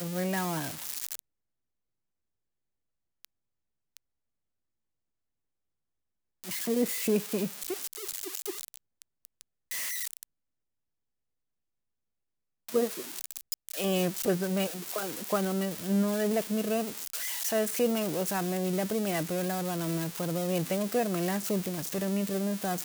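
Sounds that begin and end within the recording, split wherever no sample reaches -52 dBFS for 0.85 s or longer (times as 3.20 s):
3.25–3.97 s
6.44–10.23 s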